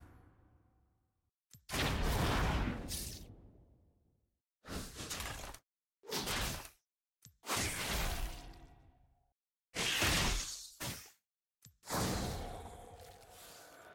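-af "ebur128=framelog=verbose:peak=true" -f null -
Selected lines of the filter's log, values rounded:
Integrated loudness:
  I:         -37.7 LUFS
  Threshold: -49.6 LUFS
Loudness range:
  LRA:         6.6 LU
  Threshold: -60.0 LUFS
  LRA low:   -44.0 LUFS
  LRA high:  -37.4 LUFS
True peak:
  Peak:      -20.4 dBFS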